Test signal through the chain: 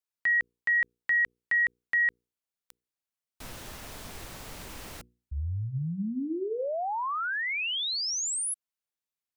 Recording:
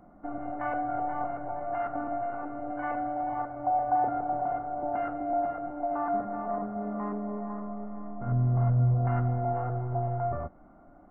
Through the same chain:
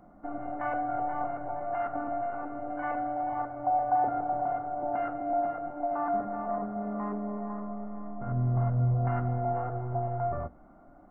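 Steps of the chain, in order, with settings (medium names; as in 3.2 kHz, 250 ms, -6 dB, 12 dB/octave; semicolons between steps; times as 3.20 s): hum notches 60/120/180/240/300/360/420/480 Hz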